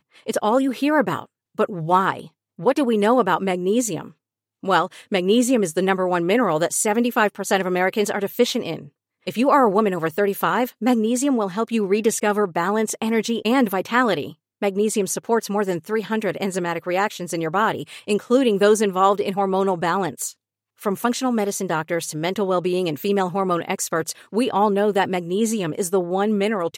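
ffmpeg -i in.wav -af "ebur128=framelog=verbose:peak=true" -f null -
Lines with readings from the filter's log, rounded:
Integrated loudness:
  I:         -21.1 LUFS
  Threshold: -31.3 LUFS
Loudness range:
  LRA:         3.0 LU
  Threshold: -41.3 LUFS
  LRA low:   -23.1 LUFS
  LRA high:  -20.1 LUFS
True peak:
  Peak:       -3.8 dBFS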